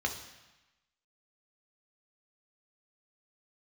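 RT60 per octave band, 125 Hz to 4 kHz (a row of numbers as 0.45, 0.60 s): 1.0, 1.0, 0.95, 1.1, 1.2, 1.1 s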